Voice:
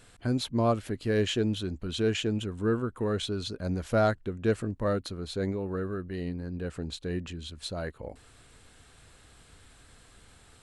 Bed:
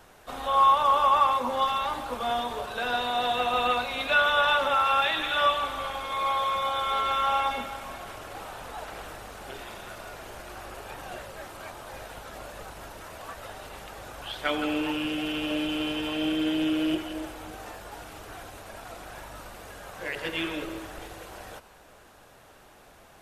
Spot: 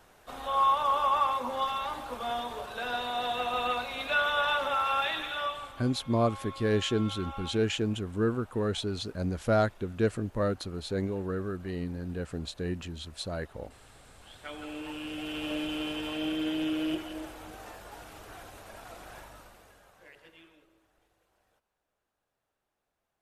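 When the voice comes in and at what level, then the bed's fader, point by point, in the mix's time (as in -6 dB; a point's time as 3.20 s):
5.55 s, -0.5 dB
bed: 5.15 s -5 dB
5.93 s -17.5 dB
14.20 s -17.5 dB
15.46 s -4.5 dB
19.16 s -4.5 dB
20.68 s -30.5 dB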